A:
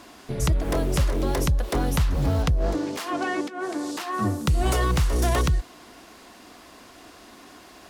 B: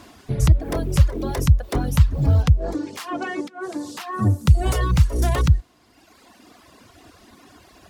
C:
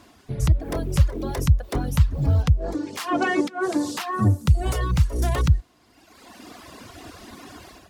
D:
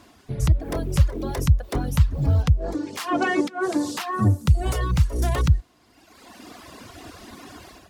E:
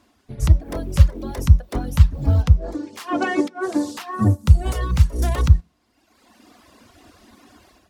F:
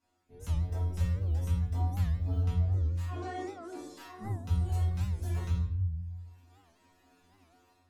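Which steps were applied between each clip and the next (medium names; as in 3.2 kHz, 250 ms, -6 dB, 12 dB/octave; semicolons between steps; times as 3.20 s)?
peaking EQ 90 Hz +11 dB 1.8 oct; reverb removal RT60 1.5 s
level rider gain up to 13 dB; trim -6 dB
no audible change
on a send at -16 dB: reverberation RT60 0.40 s, pre-delay 3 ms; on the sum: upward expansion 1.5:1, over -38 dBFS; trim +5.5 dB
inharmonic resonator 87 Hz, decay 0.66 s, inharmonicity 0.002; simulated room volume 170 m³, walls mixed, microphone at 1.6 m; warped record 78 rpm, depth 160 cents; trim -8 dB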